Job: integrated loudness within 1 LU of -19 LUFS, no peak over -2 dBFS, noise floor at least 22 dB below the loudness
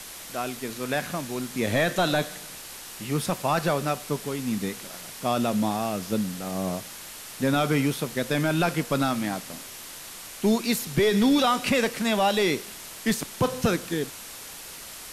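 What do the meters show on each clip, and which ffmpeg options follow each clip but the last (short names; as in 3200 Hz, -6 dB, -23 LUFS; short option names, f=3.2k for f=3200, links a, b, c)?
noise floor -41 dBFS; noise floor target -48 dBFS; loudness -26.0 LUFS; peak -13.0 dBFS; loudness target -19.0 LUFS
-> -af "afftdn=nr=7:nf=-41"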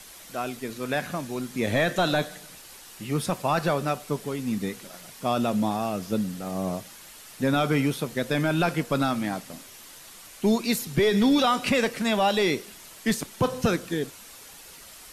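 noise floor -47 dBFS; noise floor target -48 dBFS
-> -af "afftdn=nr=6:nf=-47"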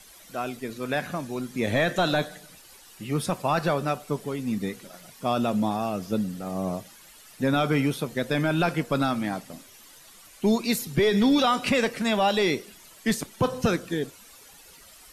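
noise floor -51 dBFS; loudness -26.5 LUFS; peak -13.5 dBFS; loudness target -19.0 LUFS
-> -af "volume=7.5dB"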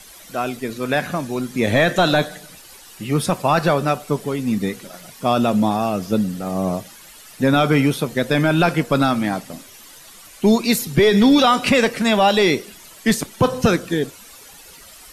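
loudness -19.0 LUFS; peak -6.0 dBFS; noise floor -43 dBFS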